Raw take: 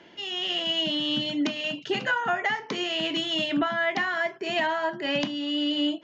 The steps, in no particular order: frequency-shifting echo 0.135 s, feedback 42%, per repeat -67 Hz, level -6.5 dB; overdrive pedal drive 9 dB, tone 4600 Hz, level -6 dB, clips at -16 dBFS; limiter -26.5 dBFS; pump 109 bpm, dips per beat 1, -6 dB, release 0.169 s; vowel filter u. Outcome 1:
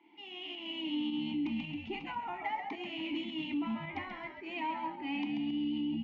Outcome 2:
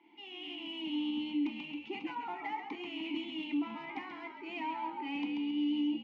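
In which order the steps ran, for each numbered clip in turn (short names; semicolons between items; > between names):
vowel filter > frequency-shifting echo > pump > limiter > overdrive pedal; pump > frequency-shifting echo > overdrive pedal > vowel filter > limiter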